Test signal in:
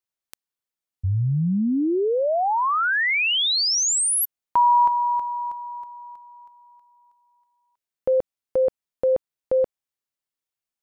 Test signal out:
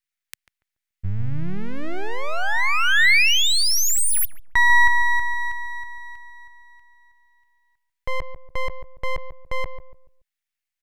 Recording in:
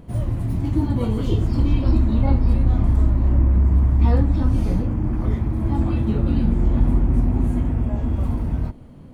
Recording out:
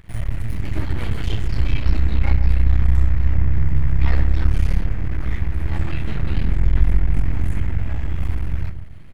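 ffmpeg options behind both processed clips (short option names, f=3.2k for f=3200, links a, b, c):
-filter_complex "[0:a]aeval=exprs='max(val(0),0)':c=same,equalizer=f=125:t=o:w=1:g=-3,equalizer=f=250:t=o:w=1:g=-11,equalizer=f=500:t=o:w=1:g=-10,equalizer=f=1k:t=o:w=1:g=-6,equalizer=f=2k:t=o:w=1:g=9,asplit=2[a][b];[b]adelay=143,lowpass=f=820:p=1,volume=-8dB,asplit=2[c][d];[d]adelay=143,lowpass=f=820:p=1,volume=0.35,asplit=2[e][f];[f]adelay=143,lowpass=f=820:p=1,volume=0.35,asplit=2[g][h];[h]adelay=143,lowpass=f=820:p=1,volume=0.35[i];[a][c][e][g][i]amix=inputs=5:normalize=0,volume=5dB"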